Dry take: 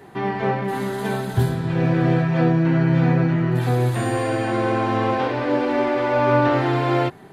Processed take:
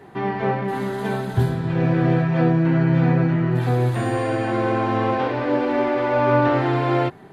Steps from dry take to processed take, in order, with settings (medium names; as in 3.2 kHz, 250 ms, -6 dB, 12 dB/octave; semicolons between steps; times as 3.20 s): treble shelf 4.7 kHz -7.5 dB